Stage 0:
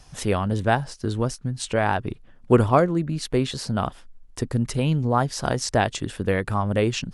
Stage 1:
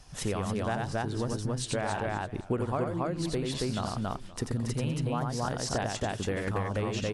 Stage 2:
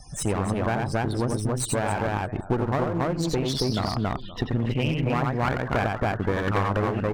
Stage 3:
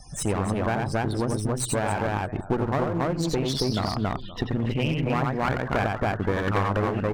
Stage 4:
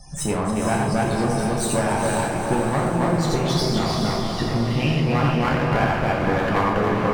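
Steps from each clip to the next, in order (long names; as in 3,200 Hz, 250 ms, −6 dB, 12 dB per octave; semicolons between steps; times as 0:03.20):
loudspeakers that aren't time-aligned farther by 30 metres −4 dB, 95 metres −2 dB; downward compressor 6 to 1, threshold −24 dBFS, peak gain reduction 14 dB; feedback echo with a swinging delay time 521 ms, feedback 36%, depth 174 cents, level −19 dB; level −3.5 dB
low-pass filter sweep 9,500 Hz → 1,400 Hz, 0:02.88–0:05.88; spectral peaks only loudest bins 64; asymmetric clip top −38 dBFS; level +8 dB
mains-hum notches 60/120 Hz
feedback delay with all-pass diffusion 465 ms, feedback 52%, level −4 dB; reverb whose tail is shaped and stops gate 150 ms falling, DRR −0.5 dB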